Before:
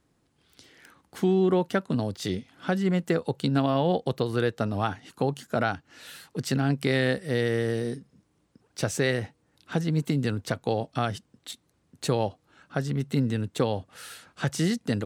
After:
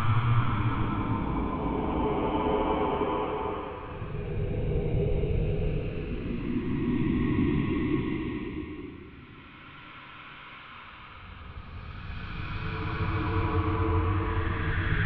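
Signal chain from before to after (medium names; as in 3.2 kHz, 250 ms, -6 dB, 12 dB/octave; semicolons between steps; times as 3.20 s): time-frequency box 5.53–5.98 s, 770–2200 Hz -17 dB; mistuned SSB -370 Hz 290–3200 Hz; on a send at -21.5 dB: reverberation RT60 1.4 s, pre-delay 4 ms; on the sum: Paulstretch 6.2×, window 0.50 s, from 4.42 s; trim +3 dB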